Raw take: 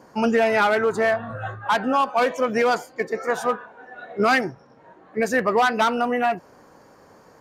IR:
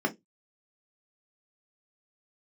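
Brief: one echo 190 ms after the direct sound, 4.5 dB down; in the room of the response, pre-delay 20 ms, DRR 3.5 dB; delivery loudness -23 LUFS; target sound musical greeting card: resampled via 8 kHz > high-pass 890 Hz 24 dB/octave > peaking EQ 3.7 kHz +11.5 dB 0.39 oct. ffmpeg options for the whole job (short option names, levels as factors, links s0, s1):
-filter_complex "[0:a]aecho=1:1:190:0.596,asplit=2[s0][s1];[1:a]atrim=start_sample=2205,adelay=20[s2];[s1][s2]afir=irnorm=-1:irlink=0,volume=0.224[s3];[s0][s3]amix=inputs=2:normalize=0,aresample=8000,aresample=44100,highpass=f=890:w=0.5412,highpass=f=890:w=1.3066,equalizer=f=3700:t=o:w=0.39:g=11.5"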